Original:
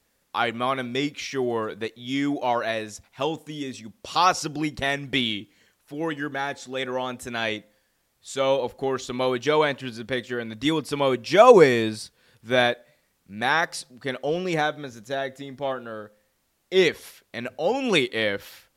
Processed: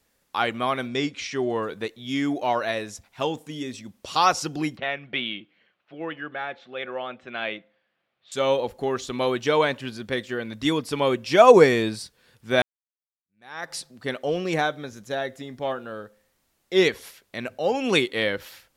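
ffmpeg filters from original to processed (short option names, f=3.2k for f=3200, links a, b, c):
-filter_complex "[0:a]asettb=1/sr,asplit=3[a][b][c];[a]atrim=end=0.884[d];[b]atrim=start=0.88:end=1.63,asetpts=PTS-STARTPTS,afade=t=in:d=0.004:c=qsin,afade=t=out:st=0.746:d=0.004:c=qsin,lowpass=f=8.7k:w=0.5412,lowpass=f=8.7k:w=1.3066[e];[c]atrim=start=1.626[f];[d][e]acrossfade=d=0.004:c1=hsin:c2=qsin[g];[g][f]acrossfade=d=0.004:c1=qsin:c2=hsin,asettb=1/sr,asplit=3[h][i][j];[h]atrim=end=4.774[k];[i]atrim=start=4.77:end=8.32,asetpts=PTS-STARTPTS,afade=t=in:d=0.004:c=qsin,afade=t=out:st=3.546:d=0.004:c=qsin,highpass=230,equalizer=f=270:t=q:w=4:g=-9,equalizer=f=430:t=q:w=4:g=-7,equalizer=f=930:t=q:w=4:g=-7,equalizer=f=1.8k:t=q:w=4:g=-4,lowpass=f=3.1k:w=0.5412,lowpass=f=3.1k:w=1.3066[l];[j]atrim=start=8.316[m];[k][l]acrossfade=d=0.004:c1=hsin:c2=qsin[n];[n][m]acrossfade=d=0.004:c1=qsin:c2=hsin,asplit=2[o][p];[o]atrim=end=12.62,asetpts=PTS-STARTPTS,afade=t=out:st=12.616:d=0.004:c=hsin[q];[p]atrim=start=12.62,asetpts=PTS-STARTPTS,afade=t=in:d=1.11:c=exp[r];[q][r]concat=n=2:v=0:a=1"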